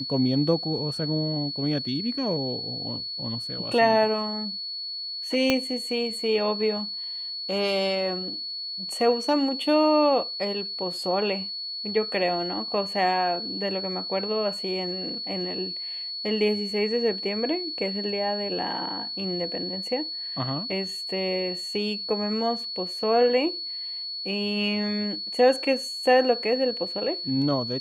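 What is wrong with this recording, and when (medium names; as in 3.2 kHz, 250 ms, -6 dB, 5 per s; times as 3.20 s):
whine 4.4 kHz -31 dBFS
5.50 s: pop -7 dBFS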